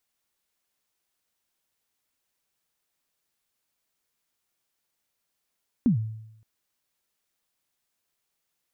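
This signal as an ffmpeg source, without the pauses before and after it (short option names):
-f lavfi -i "aevalsrc='0.178*pow(10,-3*t/0.83)*sin(2*PI*(270*0.113/log(110/270)*(exp(log(110/270)*min(t,0.113)/0.113)-1)+110*max(t-0.113,0)))':d=0.57:s=44100"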